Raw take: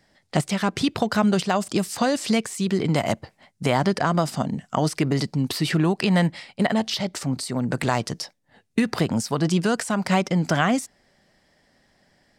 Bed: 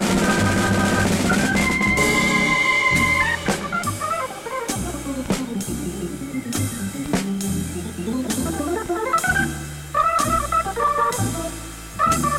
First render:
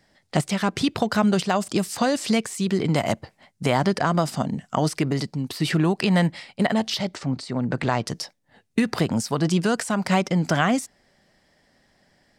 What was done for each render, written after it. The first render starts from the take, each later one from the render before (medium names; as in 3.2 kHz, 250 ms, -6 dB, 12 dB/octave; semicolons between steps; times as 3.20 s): 4.89–5.60 s: fade out linear, to -6.5 dB; 7.15–8.07 s: distance through air 110 m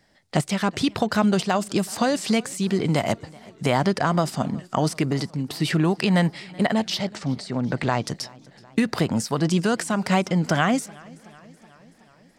modulated delay 375 ms, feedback 63%, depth 86 cents, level -24 dB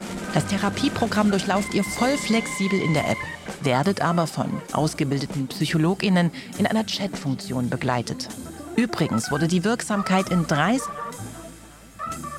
add bed -13 dB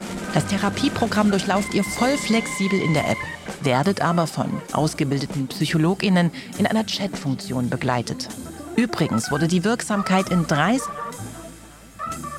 trim +1.5 dB